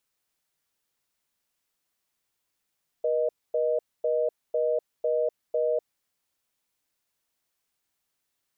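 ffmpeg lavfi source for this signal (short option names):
-f lavfi -i "aevalsrc='0.0562*(sin(2*PI*480*t)+sin(2*PI*620*t))*clip(min(mod(t,0.5),0.25-mod(t,0.5))/0.005,0,1)':d=2.86:s=44100"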